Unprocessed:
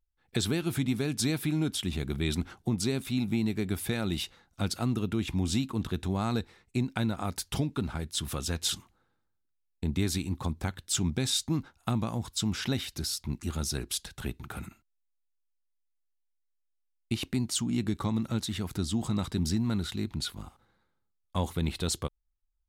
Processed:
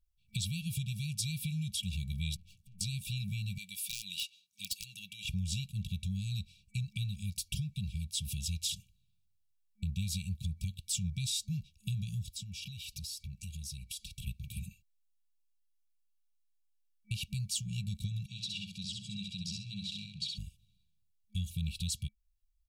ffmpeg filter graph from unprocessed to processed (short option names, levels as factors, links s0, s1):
-filter_complex "[0:a]asettb=1/sr,asplit=3[s0][s1][s2];[s0]atrim=end=2.364[s3];[s1]atrim=start=2.36:end=2.81,asetpts=PTS-STARTPTS,afade=t=in:d=0.004:c=qsin,afade=t=out:st=0.446:d=0.004:c=qsin,acompressor=threshold=0.0126:ratio=16:attack=3.2:release=140:knee=1:detection=peak,aeval=exprs='(tanh(501*val(0)+0.65)-tanh(0.65))/501':c=same[s4];[s2]atrim=start=2.806[s5];[s3][s4]acrossfade=d=0.004:c1=hsin:c2=qsin[s6];[s6][s5]acrossfade=d=0.004:c1=qsin:c2=hsin,asettb=1/sr,asplit=3[s7][s8][s9];[s7]atrim=end=3.584[s10];[s8]atrim=start=3.58:end=5.25,asetpts=PTS-STARTPTS,afade=t=in:d=0.004:c=qsin,afade=t=out:st=1.666:d=0.004:c=qsin,highpass=590,aeval=exprs='(mod(14.1*val(0)+1,2)-1)/14.1':c=same[s11];[s9]atrim=start=5.246[s12];[s10][s11]acrossfade=d=0.004:c1=hsin:c2=qsin[s13];[s13][s12]acrossfade=d=0.004:c1=qsin:c2=hsin,asettb=1/sr,asplit=3[s14][s15][s16];[s14]atrim=end=12.304[s17];[s15]atrim=start=12.3:end=14.27,asetpts=PTS-STARTPTS,afade=t=in:d=0.004:c=qsin,afade=t=out:st=1.966:d=0.004:c=qsin,acompressor=threshold=0.01:ratio=5:attack=3.2:release=140:knee=1:detection=peak,equalizer=f=2200:w=6.2:g=3.5[s18];[s16]atrim=start=14.266[s19];[s17][s18]acrossfade=d=0.004:c1=hsin:c2=qsin[s20];[s20][s19]acrossfade=d=0.004:c1=qsin:c2=hsin,asettb=1/sr,asplit=3[s21][s22][s23];[s21]atrim=end=18.264[s24];[s22]atrim=start=18.26:end=20.38,asetpts=PTS-STARTPTS,afade=t=in:d=0.004:c=qsin,afade=t=out:st=2.116:d=0.004:c=qsin,highpass=290,lowpass=4800,aecho=1:1:65|130|195:0.631|0.139|0.0305,atrim=end_sample=93492[s25];[s23]atrim=start=20.376[s26];[s24][s25]acrossfade=d=0.004:c1=hsin:c2=qsin[s27];[s27][s26]acrossfade=d=0.004:c1=qsin:c2=hsin,afftfilt=real='re*(1-between(b*sr/4096,210,2300))':imag='im*(1-between(b*sr/4096,210,2300))':win_size=4096:overlap=0.75,aecho=1:1:1.8:0.54,acompressor=threshold=0.0158:ratio=2"